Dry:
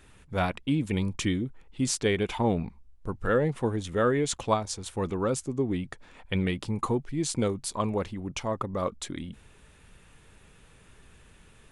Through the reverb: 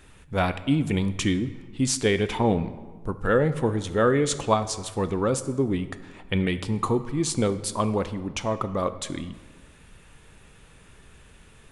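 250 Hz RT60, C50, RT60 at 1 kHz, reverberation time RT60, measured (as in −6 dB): 1.4 s, 13.5 dB, 1.4 s, 1.4 s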